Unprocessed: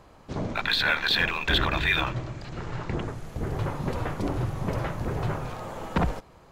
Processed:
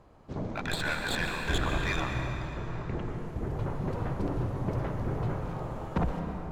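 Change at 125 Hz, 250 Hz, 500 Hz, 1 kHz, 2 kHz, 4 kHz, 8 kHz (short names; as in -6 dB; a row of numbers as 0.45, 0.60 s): -2.0, -2.0, -2.5, -4.5, -7.5, -11.0, +1.5 dB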